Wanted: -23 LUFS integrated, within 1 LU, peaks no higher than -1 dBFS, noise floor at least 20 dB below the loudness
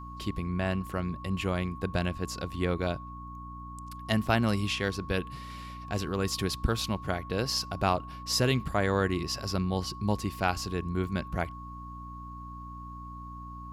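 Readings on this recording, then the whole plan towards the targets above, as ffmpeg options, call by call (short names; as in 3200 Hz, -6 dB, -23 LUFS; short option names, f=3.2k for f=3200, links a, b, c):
hum 60 Hz; harmonics up to 300 Hz; hum level -41 dBFS; steady tone 1100 Hz; tone level -43 dBFS; loudness -30.5 LUFS; peak -11.0 dBFS; loudness target -23.0 LUFS
-> -af "bandreject=f=60:t=h:w=4,bandreject=f=120:t=h:w=4,bandreject=f=180:t=h:w=4,bandreject=f=240:t=h:w=4,bandreject=f=300:t=h:w=4"
-af "bandreject=f=1.1k:w=30"
-af "volume=7.5dB"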